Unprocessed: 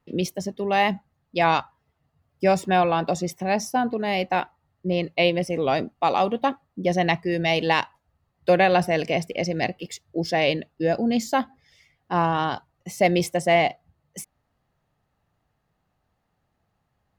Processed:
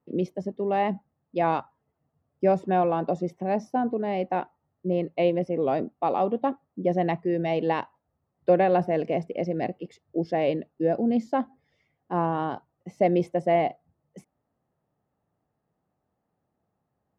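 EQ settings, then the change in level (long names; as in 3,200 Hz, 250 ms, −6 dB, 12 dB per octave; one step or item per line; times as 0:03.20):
resonant band-pass 350 Hz, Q 0.68
0.0 dB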